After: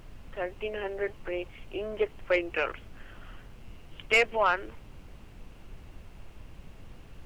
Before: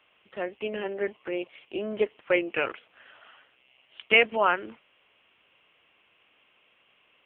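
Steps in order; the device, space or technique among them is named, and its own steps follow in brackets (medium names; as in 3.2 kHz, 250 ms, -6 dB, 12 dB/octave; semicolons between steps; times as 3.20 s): aircraft cabin announcement (band-pass 360–3200 Hz; saturation -13.5 dBFS, distortion -16 dB; brown noise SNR 11 dB)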